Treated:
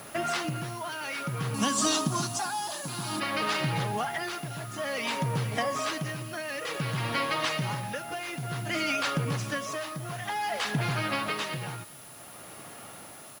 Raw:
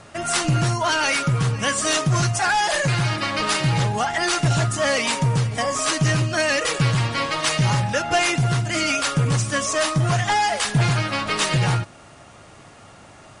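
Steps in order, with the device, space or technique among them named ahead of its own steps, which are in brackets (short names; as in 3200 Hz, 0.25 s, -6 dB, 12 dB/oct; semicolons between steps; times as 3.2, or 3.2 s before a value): medium wave at night (BPF 150–4300 Hz; compressor, threshold -25 dBFS, peak gain reduction 9 dB; tremolo 0.55 Hz, depth 64%; whine 10000 Hz -50 dBFS; white noise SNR 20 dB); 1.54–3.2 ten-band EQ 125 Hz -5 dB, 250 Hz +11 dB, 500 Hz -7 dB, 1000 Hz +7 dB, 2000 Hz -11 dB, 4000 Hz +5 dB, 8000 Hz +11 dB; echo 0.39 s -22.5 dB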